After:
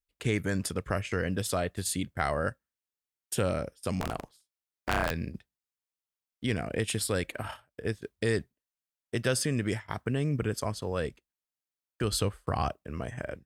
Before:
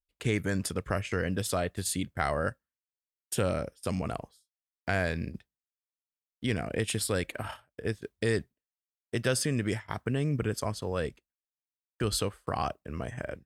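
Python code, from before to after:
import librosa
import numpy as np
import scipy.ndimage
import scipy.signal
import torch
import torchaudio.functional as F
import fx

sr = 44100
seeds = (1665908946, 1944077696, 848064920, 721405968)

y = fx.cycle_switch(x, sr, every=3, mode='inverted', at=(4.0, 5.11))
y = fx.low_shelf(y, sr, hz=110.0, db=10.5, at=(12.2, 12.69))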